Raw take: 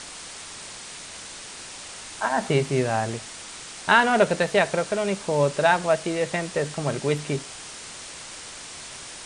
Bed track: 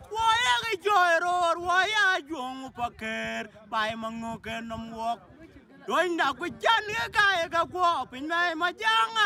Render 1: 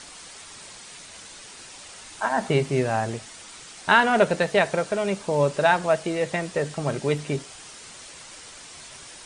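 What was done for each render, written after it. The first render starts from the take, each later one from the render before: noise reduction 6 dB, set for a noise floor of -40 dBFS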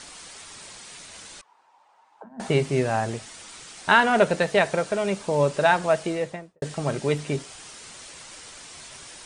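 1.41–2.40 s: auto-wah 200–1200 Hz, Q 6.7, down, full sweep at -24 dBFS; 6.04–6.62 s: studio fade out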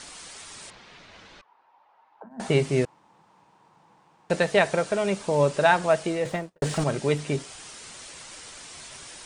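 0.70–2.31 s: distance through air 240 m; 2.85–4.30 s: room tone; 6.25–6.84 s: waveshaping leveller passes 2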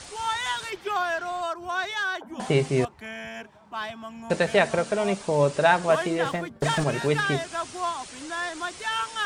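add bed track -5 dB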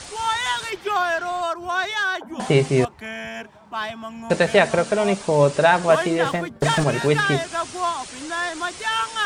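trim +5 dB; peak limiter -3 dBFS, peak gain reduction 3 dB

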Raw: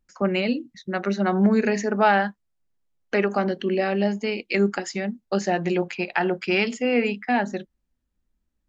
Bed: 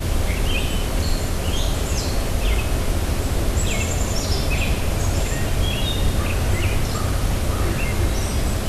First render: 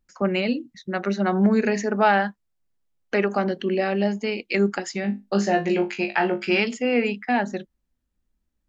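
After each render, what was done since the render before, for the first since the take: 5.02–6.60 s: flutter echo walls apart 3.4 m, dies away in 0.21 s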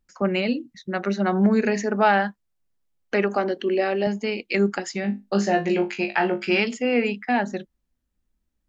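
3.36–4.07 s: resonant low shelf 230 Hz -7.5 dB, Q 1.5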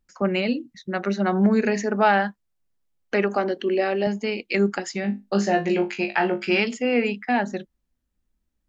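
no audible change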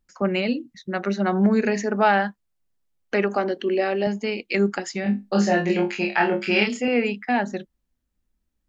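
5.03–6.88 s: doubling 29 ms -3 dB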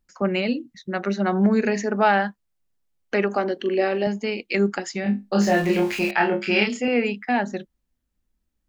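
3.57–4.03 s: doubling 42 ms -10 dB; 5.41–6.11 s: jump at every zero crossing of -31 dBFS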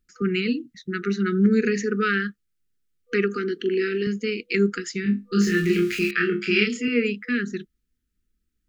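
FFT band-reject 490–1200 Hz; dynamic bell 140 Hz, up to +7 dB, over -46 dBFS, Q 5.2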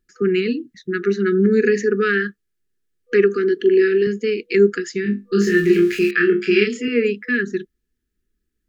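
wow and flutter 15 cents; small resonant body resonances 390/1700 Hz, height 10 dB, ringing for 25 ms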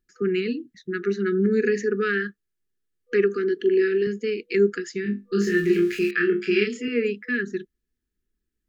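trim -5.5 dB

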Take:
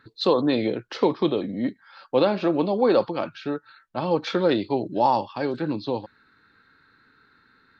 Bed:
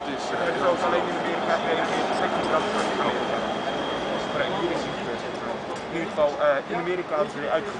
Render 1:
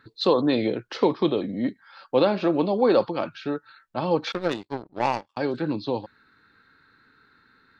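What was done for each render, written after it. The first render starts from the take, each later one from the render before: 4.32–5.37 s: power-law waveshaper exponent 2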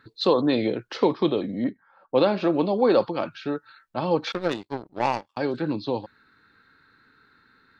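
1.64–2.26 s: level-controlled noise filter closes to 600 Hz, open at -15 dBFS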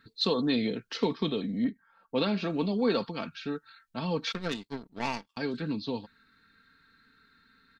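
peaking EQ 670 Hz -12.5 dB 2.3 oct; comb 4.4 ms, depth 50%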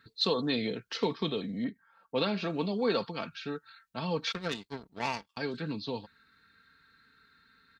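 high-pass 47 Hz; peaking EQ 250 Hz -5.5 dB 0.87 oct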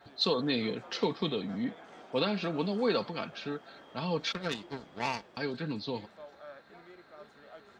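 add bed -27 dB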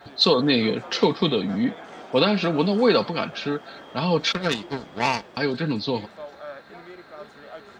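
trim +10.5 dB

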